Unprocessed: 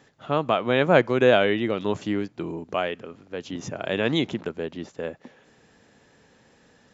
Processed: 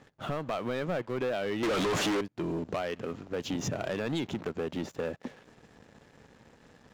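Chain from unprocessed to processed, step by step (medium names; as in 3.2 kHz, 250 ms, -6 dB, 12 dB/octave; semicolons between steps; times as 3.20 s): bass shelf 160 Hz +5 dB; 1.63–2.21 s: overdrive pedal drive 43 dB, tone 3.1 kHz, clips at -10 dBFS; compression 6:1, threshold -31 dBFS, peak gain reduction 19 dB; waveshaping leveller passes 3; tape noise reduction on one side only decoder only; trim -6 dB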